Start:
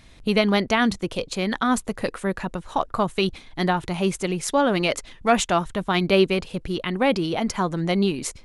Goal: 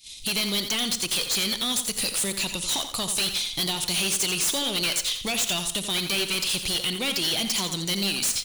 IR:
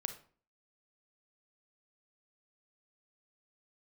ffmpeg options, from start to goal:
-filter_complex "[0:a]agate=range=0.0224:threshold=0.0126:ratio=3:detection=peak,acompressor=threshold=0.0126:ratio=3,aexciter=amount=10.2:drive=9.8:freq=2600,asoftclip=type=hard:threshold=0.0398,aecho=1:1:86|172|258|344:0.355|0.11|0.0341|0.0106,asplit=2[s0][s1];[1:a]atrim=start_sample=2205[s2];[s1][s2]afir=irnorm=-1:irlink=0,volume=0.841[s3];[s0][s3]amix=inputs=2:normalize=0"

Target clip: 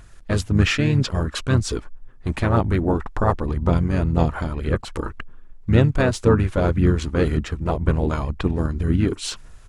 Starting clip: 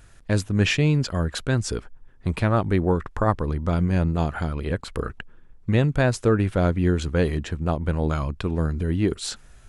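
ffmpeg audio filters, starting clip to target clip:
-filter_complex "[0:a]aphaser=in_gain=1:out_gain=1:delay=3.5:decay=0.33:speed=1.9:type=sinusoidal,asplit=3[s0][s1][s2];[s1]asetrate=29433,aresample=44100,atempo=1.49831,volume=0.178[s3];[s2]asetrate=33038,aresample=44100,atempo=1.33484,volume=0.562[s4];[s0][s3][s4]amix=inputs=3:normalize=0"

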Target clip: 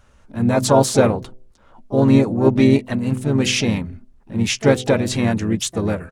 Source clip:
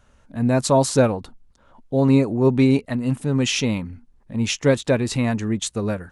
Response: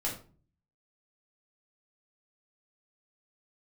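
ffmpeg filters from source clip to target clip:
-filter_complex "[0:a]bandreject=f=127.1:t=h:w=4,bandreject=f=254.2:t=h:w=4,bandreject=f=381.3:t=h:w=4,bandreject=f=508.4:t=h:w=4,bandreject=f=635.5:t=h:w=4,asplit=3[s0][s1][s2];[s1]asetrate=37084,aresample=44100,atempo=1.18921,volume=0.447[s3];[s2]asetrate=66075,aresample=44100,atempo=0.66742,volume=0.2[s4];[s0][s3][s4]amix=inputs=3:normalize=0,volume=1.26"

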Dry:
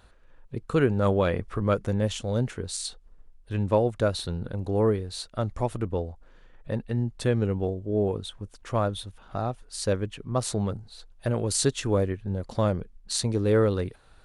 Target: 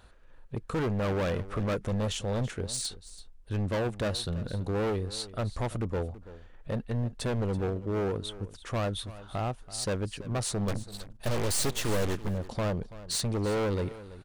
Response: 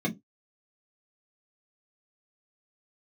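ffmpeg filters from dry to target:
-filter_complex "[0:a]asoftclip=type=hard:threshold=0.0473,asettb=1/sr,asplit=3[s0][s1][s2];[s0]atrim=end=10.684[s3];[s1]atrim=start=10.68:end=12.29,asetpts=PTS-STARTPTS,afade=t=in:d=0.004:c=qsin,afade=t=out:st=1.606:d=0.004:c=qsin,aeval=exprs='0.0473*(cos(1*acos(clip(val(0)/0.0473,-1,1)))-cos(1*PI/2))+0.0168*(cos(6*acos(clip(val(0)/0.0473,-1,1)))-cos(6*PI/2))':c=same[s4];[s2]atrim=start=12.286[s5];[s3][s4]acrossfade=d=0.004:c1=hsin:c2=qsin[s6];[s6][s5]acrossfade=d=0.004:c1=qsin:c2=hsin,aecho=1:1:332:0.15"

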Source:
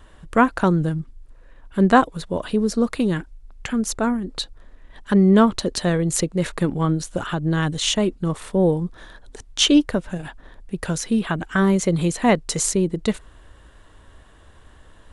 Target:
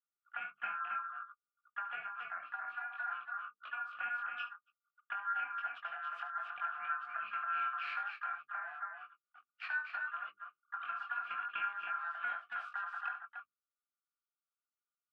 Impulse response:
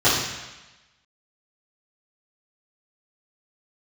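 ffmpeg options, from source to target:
-filter_complex "[0:a]aeval=exprs='val(0)*sin(2*PI*1200*n/s)':c=same,flanger=delay=19.5:depth=4.2:speed=0.59,asplit=3[s0][s1][s2];[s0]bandpass=f=730:t=q:w=8,volume=1[s3];[s1]bandpass=f=1090:t=q:w=8,volume=0.501[s4];[s2]bandpass=f=2440:t=q:w=8,volume=0.355[s5];[s3][s4][s5]amix=inputs=3:normalize=0,acompressor=threshold=0.00794:ratio=8,equalizer=f=870:t=o:w=1.2:g=10.5,aecho=1:1:72|276:0.282|0.596,agate=range=0.00316:threshold=0.00891:ratio=16:detection=peak,bandreject=f=50:t=h:w=6,bandreject=f=100:t=h:w=6,bandreject=f=150:t=h:w=6,bandreject=f=200:t=h:w=6,bandreject=f=250:t=h:w=6,bandreject=f=300:t=h:w=6,bandreject=f=350:t=h:w=6,bandreject=f=400:t=h:w=6,bandreject=f=450:t=h:w=6,asplit=2[s6][s7];[s7]asetrate=52444,aresample=44100,atempo=0.840896,volume=0.282[s8];[s6][s8]amix=inputs=2:normalize=0,firequalizer=gain_entry='entry(190,0);entry(510,-18);entry(950,-17);entry(1400,11);entry(3300,2);entry(6100,-17)':delay=0.05:min_phase=1,volume=0.75"

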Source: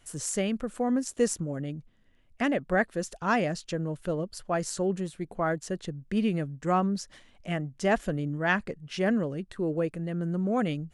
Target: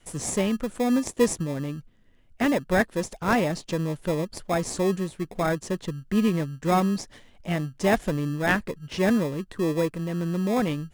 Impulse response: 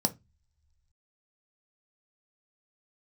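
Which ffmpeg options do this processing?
-filter_complex "[0:a]adynamicequalizer=threshold=0.0141:dfrequency=170:dqfactor=1.2:tfrequency=170:tqfactor=1.2:attack=5:release=100:ratio=0.375:range=1.5:mode=cutabove:tftype=bell,asplit=2[s0][s1];[s1]acrusher=samples=30:mix=1:aa=0.000001,volume=0.501[s2];[s0][s2]amix=inputs=2:normalize=0,volume=1.19"

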